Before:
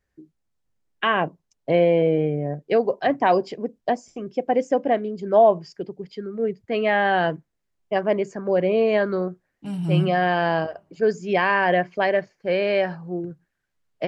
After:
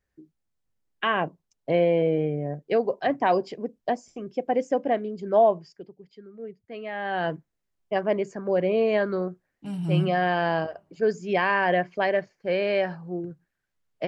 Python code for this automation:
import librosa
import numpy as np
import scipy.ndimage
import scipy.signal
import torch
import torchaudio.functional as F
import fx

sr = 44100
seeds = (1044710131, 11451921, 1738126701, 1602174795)

y = fx.gain(x, sr, db=fx.line((5.44, -3.5), (5.97, -14.0), (6.91, -14.0), (7.33, -3.0)))